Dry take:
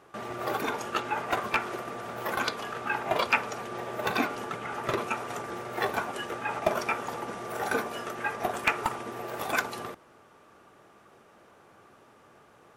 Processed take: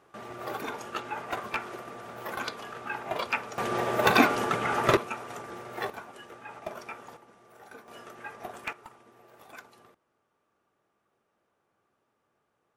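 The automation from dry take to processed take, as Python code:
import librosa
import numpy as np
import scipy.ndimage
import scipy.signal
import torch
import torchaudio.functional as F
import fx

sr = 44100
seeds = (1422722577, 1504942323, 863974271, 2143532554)

y = fx.gain(x, sr, db=fx.steps((0.0, -5.0), (3.58, 7.5), (4.97, -4.5), (5.9, -12.0), (7.17, -20.0), (7.88, -10.5), (8.73, -19.5)))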